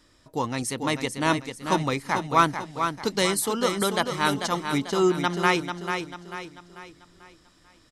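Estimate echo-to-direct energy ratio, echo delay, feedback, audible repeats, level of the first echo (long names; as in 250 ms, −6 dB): −6.0 dB, 442 ms, 42%, 4, −7.0 dB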